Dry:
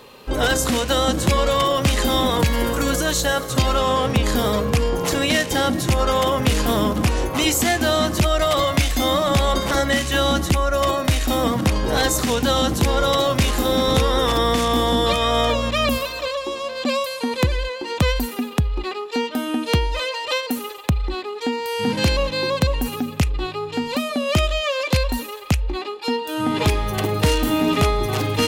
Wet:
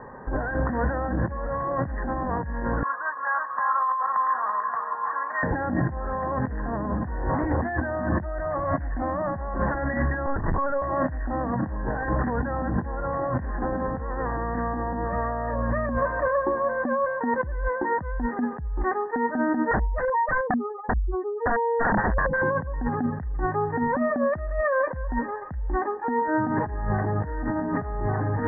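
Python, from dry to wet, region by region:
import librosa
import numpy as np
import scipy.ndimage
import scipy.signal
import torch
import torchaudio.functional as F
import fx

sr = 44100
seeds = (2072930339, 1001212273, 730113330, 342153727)

y = fx.chain(x, sr, fx.ladder_bandpass(hz=1200.0, resonance_pct=75),
    fx.echo_single(ms=333, db=-4.5), at=(2.83, 5.43))
y = fx.chain(y, sr, fx.over_compress(threshold_db=-21.0, ratio=-0.5),
    fx.lpc_vocoder(seeds[0], excitation='pitch_kept', order=10), at=(10.26, 10.82))
y = fx.chain(y, sr, fx.spec_expand(power=2.7),
    fx.highpass(hz=76.0, slope=12),
    fx.overflow_wrap(gain_db=20.0), at=(19.71, 22.42))
y = scipy.signal.sosfilt(scipy.signal.cheby1(8, 1.0, 1900.0, 'lowpass', fs=sr, output='sos'), y)
y = y + 0.4 * np.pad(y, (int(1.2 * sr / 1000.0), 0))[:len(y)]
y = fx.over_compress(y, sr, threshold_db=-26.0, ratio=-1.0)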